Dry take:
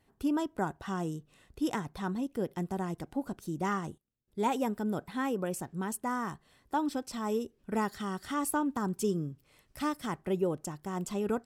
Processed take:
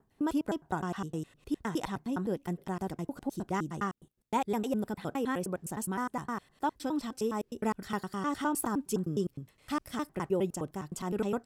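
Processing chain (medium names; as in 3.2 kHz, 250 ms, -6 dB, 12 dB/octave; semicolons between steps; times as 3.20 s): slices played last to first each 103 ms, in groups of 2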